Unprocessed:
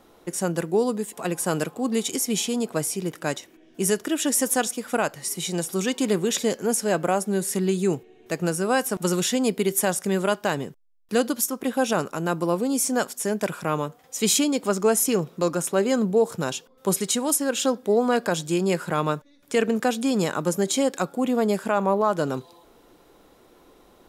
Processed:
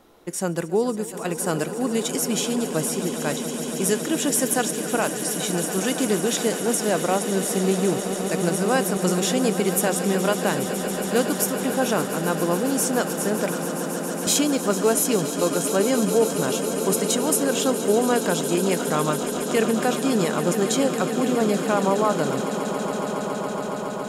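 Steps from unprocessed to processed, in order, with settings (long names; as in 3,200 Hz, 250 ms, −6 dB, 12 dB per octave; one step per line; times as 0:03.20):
0:13.58–0:14.27: volume swells 585 ms
echo that builds up and dies away 139 ms, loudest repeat 8, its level −14 dB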